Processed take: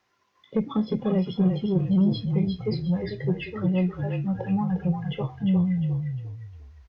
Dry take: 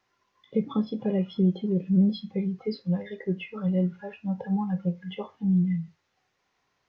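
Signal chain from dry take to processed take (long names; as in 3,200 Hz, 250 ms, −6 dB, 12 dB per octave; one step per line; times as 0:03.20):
harmonic generator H 5 −23 dB, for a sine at −12 dBFS
echo with shifted repeats 353 ms, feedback 33%, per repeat −36 Hz, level −5.5 dB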